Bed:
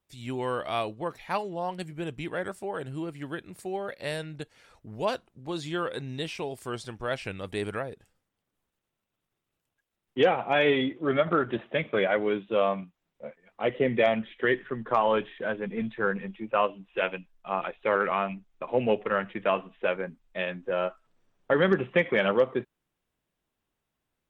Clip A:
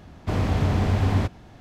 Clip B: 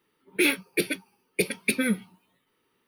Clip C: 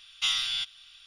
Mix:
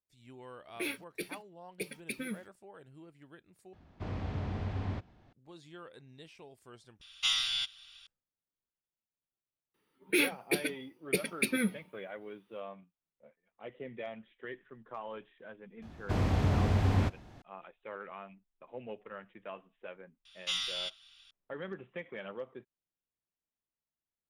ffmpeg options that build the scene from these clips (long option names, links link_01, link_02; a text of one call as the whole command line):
ffmpeg -i bed.wav -i cue0.wav -i cue1.wav -i cue2.wav -filter_complex "[2:a]asplit=2[link_01][link_02];[1:a]asplit=2[link_03][link_04];[3:a]asplit=2[link_05][link_06];[0:a]volume=-19dB[link_07];[link_01]acrusher=bits=7:mix=0:aa=0.5[link_08];[link_03]lowpass=4500[link_09];[link_07]asplit=3[link_10][link_11][link_12];[link_10]atrim=end=3.734[link_13];[link_09]atrim=end=1.6,asetpts=PTS-STARTPTS,volume=-14.5dB[link_14];[link_11]atrim=start=5.326:end=7.014[link_15];[link_05]atrim=end=1.06,asetpts=PTS-STARTPTS,volume=-2.5dB[link_16];[link_12]atrim=start=8.066[link_17];[link_08]atrim=end=2.87,asetpts=PTS-STARTPTS,volume=-14.5dB,afade=type=in:duration=0.004:curve=hsin,afade=type=out:start_time=2.866:duration=0.004:curve=hsin,adelay=410[link_18];[link_02]atrim=end=2.87,asetpts=PTS-STARTPTS,volume=-5.5dB,afade=type=in:duration=0.004:curve=hsin,afade=type=out:start_time=2.866:duration=0.004:curve=hsin,adelay=9740[link_19];[link_04]atrim=end=1.6,asetpts=PTS-STARTPTS,volume=-6dB,afade=type=in:duration=0.004:curve=hsin,afade=type=out:start_time=1.596:duration=0.004:curve=hsin,adelay=15820[link_20];[link_06]atrim=end=1.06,asetpts=PTS-STARTPTS,volume=-7dB,afade=type=in:duration=0.004:curve=hsin,afade=type=out:start_time=1.056:duration=0.004:curve=hsin,adelay=20250[link_21];[link_13][link_14]acrossfade=duration=0.004:curve1=hsin:curve2=hsin[link_22];[link_22][link_15]acrossfade=duration=0.004:curve1=hsin:curve2=hsin[link_23];[link_23][link_16]acrossfade=duration=0.004:curve1=hsin:curve2=hsin[link_24];[link_24][link_17]acrossfade=duration=0.004:curve1=hsin:curve2=hsin[link_25];[link_25][link_18][link_19][link_20][link_21]amix=inputs=5:normalize=0" out.wav